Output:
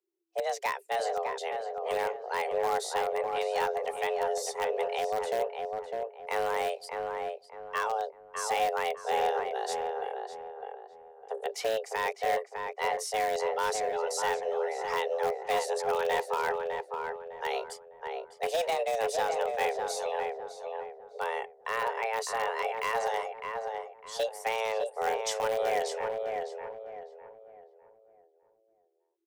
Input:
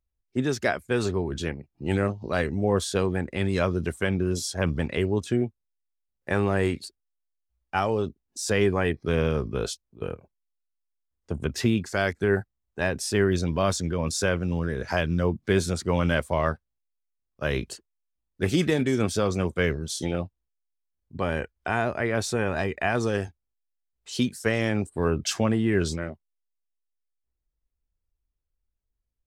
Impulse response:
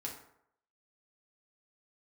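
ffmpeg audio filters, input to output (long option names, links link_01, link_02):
-filter_complex "[0:a]afreqshift=330,asplit=2[link_01][link_02];[link_02]aeval=exprs='(mod(5.96*val(0)+1,2)-1)/5.96':channel_layout=same,volume=-11dB[link_03];[link_01][link_03]amix=inputs=2:normalize=0,asplit=2[link_04][link_05];[link_05]adelay=605,lowpass=frequency=1600:poles=1,volume=-3.5dB,asplit=2[link_06][link_07];[link_07]adelay=605,lowpass=frequency=1600:poles=1,volume=0.37,asplit=2[link_08][link_09];[link_09]adelay=605,lowpass=frequency=1600:poles=1,volume=0.37,asplit=2[link_10][link_11];[link_11]adelay=605,lowpass=frequency=1600:poles=1,volume=0.37,asplit=2[link_12][link_13];[link_13]adelay=605,lowpass=frequency=1600:poles=1,volume=0.37[link_14];[link_04][link_06][link_08][link_10][link_12][link_14]amix=inputs=6:normalize=0,volume=-8dB"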